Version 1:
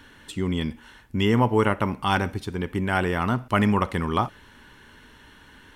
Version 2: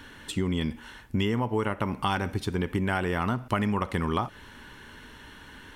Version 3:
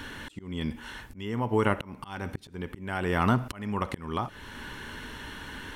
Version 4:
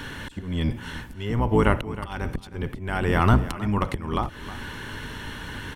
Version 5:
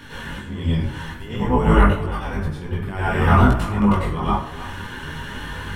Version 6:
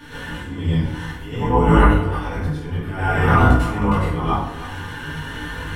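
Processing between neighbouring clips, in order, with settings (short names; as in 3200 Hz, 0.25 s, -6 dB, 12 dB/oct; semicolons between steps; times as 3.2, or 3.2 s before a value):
compressor 10:1, threshold -26 dBFS, peak gain reduction 12 dB; gain +3 dB
auto swell 0.699 s; gain +6.5 dB
octaver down 1 oct, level +1 dB; echo 0.315 s -15.5 dB; gain +4 dB
plate-style reverb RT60 0.57 s, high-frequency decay 0.65×, pre-delay 85 ms, DRR -9 dB; detuned doubles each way 18 cents; gain -2 dB
FDN reverb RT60 0.51 s, low-frequency decay 1×, high-frequency decay 0.8×, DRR -3 dB; gain -3.5 dB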